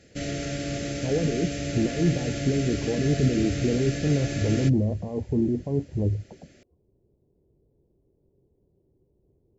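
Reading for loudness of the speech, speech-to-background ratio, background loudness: -26.5 LUFS, 4.5 dB, -31.0 LUFS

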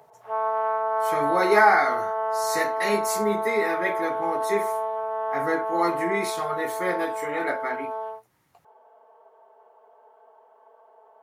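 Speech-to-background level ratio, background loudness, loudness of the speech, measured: 1.5 dB, -27.5 LUFS, -26.0 LUFS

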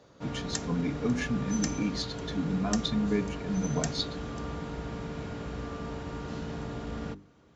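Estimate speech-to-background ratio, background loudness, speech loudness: 5.0 dB, -37.0 LUFS, -32.0 LUFS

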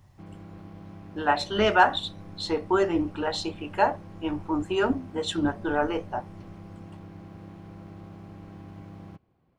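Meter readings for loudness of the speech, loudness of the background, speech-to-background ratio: -26.5 LUFS, -45.0 LUFS, 18.5 dB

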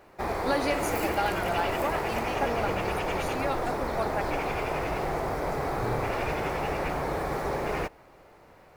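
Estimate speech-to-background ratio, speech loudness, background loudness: -3.5 dB, -33.5 LUFS, -30.0 LUFS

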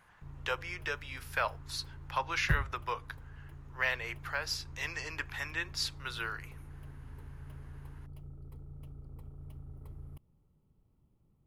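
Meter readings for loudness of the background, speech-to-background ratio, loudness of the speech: -47.5 LUFS, 11.5 dB, -36.0 LUFS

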